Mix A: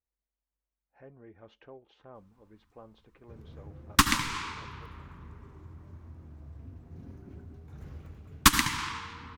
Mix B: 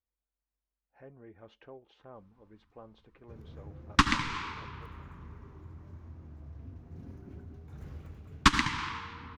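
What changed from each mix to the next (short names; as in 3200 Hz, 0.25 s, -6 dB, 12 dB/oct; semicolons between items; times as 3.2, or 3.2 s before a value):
second sound: add air absorption 130 m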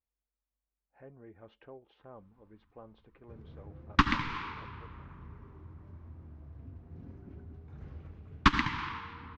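first sound: send off; master: add air absorption 190 m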